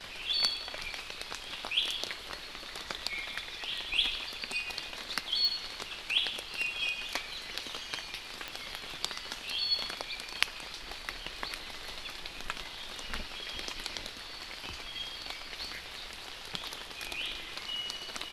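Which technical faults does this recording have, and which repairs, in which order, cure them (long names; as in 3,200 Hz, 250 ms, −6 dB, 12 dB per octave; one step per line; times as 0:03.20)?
0:05.45: click
0:08.48: click −21 dBFS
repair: click removal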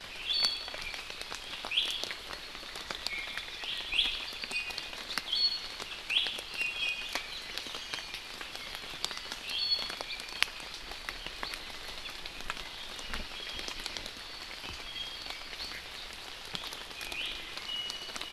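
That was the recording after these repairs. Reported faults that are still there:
none of them is left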